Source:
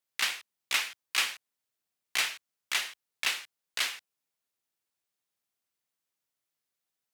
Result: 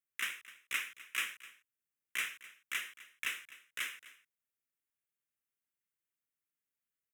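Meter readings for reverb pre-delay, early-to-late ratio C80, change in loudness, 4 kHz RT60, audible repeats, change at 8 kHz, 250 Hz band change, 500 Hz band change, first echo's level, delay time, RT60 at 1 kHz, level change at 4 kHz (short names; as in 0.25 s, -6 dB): none, none, -8.0 dB, none, 1, -9.5 dB, -6.5 dB, -12.0 dB, -18.0 dB, 0.255 s, none, -11.5 dB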